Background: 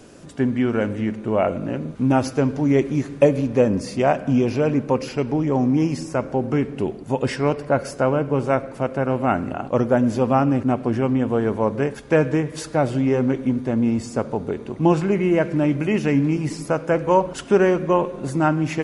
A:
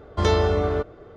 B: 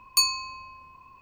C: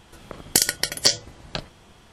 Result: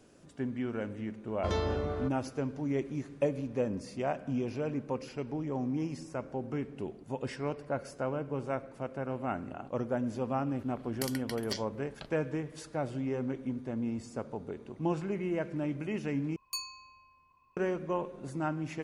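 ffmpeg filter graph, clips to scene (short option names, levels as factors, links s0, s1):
-filter_complex "[0:a]volume=0.188[s0];[3:a]equalizer=f=7300:w=1.1:g=-10[s1];[s0]asplit=2[s2][s3];[s2]atrim=end=16.364[s4];[2:a]atrim=end=1.21,asetpts=PTS-STARTPTS,volume=0.158[s5];[s3]atrim=start=17.566[s6];[1:a]atrim=end=1.16,asetpts=PTS-STARTPTS,volume=0.251,afade=t=in:d=0.004:c=hsin,afade=t=out:st=1.156:d=0.004:c=hsin,adelay=1260[s7];[s1]atrim=end=2.12,asetpts=PTS-STARTPTS,volume=0.168,afade=t=in:d=0.004:c=hsin,afade=t=out:st=2.116:d=0.004:c=hsin,adelay=10460[s8];[s4][s5]acrossfade=d=0.004:c1=hsin:c2=hsin[s9];[s9][s6]acrossfade=d=0.004:c1=hsin:c2=hsin[s10];[s10][s7][s8]amix=inputs=3:normalize=0"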